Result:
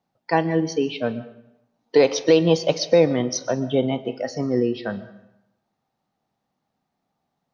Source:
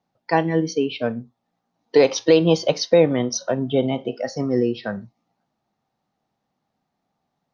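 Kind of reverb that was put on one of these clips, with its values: algorithmic reverb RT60 0.84 s, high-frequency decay 0.8×, pre-delay 85 ms, DRR 15.5 dB; trim -1 dB

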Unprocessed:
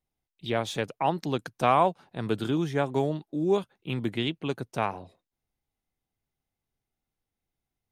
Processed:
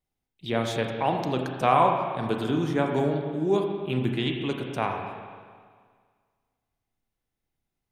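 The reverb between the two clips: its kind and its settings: spring tank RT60 1.8 s, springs 31/35/39 ms, chirp 50 ms, DRR 2 dB

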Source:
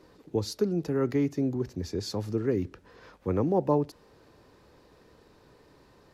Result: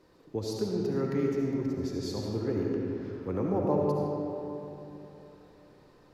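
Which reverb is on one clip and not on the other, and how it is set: algorithmic reverb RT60 3.2 s, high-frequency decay 0.55×, pre-delay 30 ms, DRR -2 dB; trim -5.5 dB

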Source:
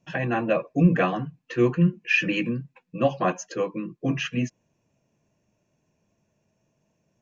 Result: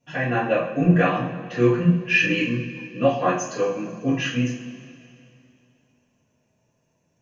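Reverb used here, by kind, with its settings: two-slope reverb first 0.43 s, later 2.7 s, from -17 dB, DRR -8.5 dB; trim -5.5 dB

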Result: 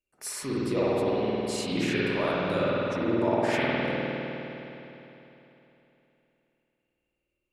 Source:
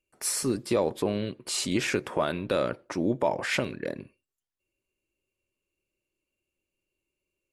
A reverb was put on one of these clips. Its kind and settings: spring tank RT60 3.3 s, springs 51 ms, chirp 50 ms, DRR -8.5 dB; trim -7 dB

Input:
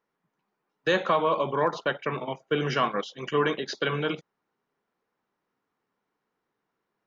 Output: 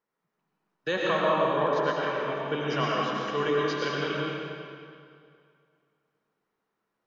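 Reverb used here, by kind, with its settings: algorithmic reverb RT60 2.3 s, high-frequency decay 0.85×, pre-delay 65 ms, DRR -4 dB; trim -5.5 dB

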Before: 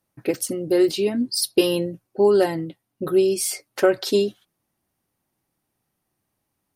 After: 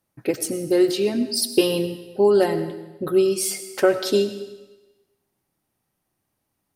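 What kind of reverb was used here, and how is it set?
algorithmic reverb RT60 1.1 s, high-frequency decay 1×, pre-delay 50 ms, DRR 11 dB

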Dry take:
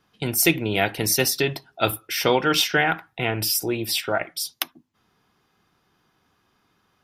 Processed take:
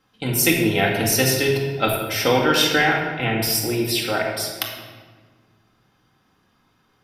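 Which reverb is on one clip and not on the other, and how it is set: simulated room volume 1400 m³, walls mixed, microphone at 2.1 m; trim -1 dB

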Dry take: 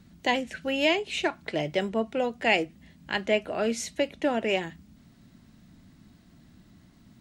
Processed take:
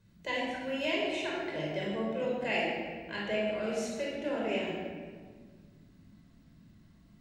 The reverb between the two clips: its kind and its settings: simulated room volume 2100 m³, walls mixed, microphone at 5.1 m; trim -14.5 dB

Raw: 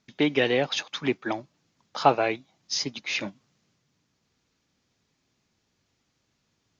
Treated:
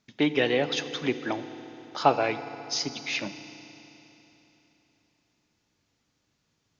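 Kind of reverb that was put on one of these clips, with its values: FDN reverb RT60 3.5 s, high-frequency decay 0.95×, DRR 10.5 dB; trim -1.5 dB

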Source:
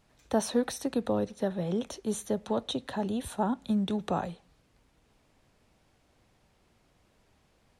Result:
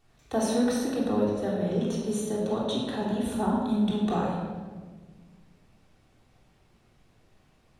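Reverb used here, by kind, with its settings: simulated room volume 1300 m³, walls mixed, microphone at 3.5 m; trim -4 dB

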